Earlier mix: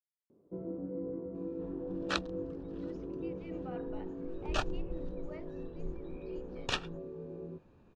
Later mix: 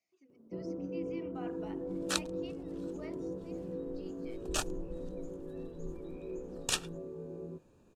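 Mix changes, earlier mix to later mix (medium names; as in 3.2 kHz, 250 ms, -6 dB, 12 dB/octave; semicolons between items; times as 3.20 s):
speech: entry -2.30 s; second sound -4.5 dB; master: remove distance through air 230 m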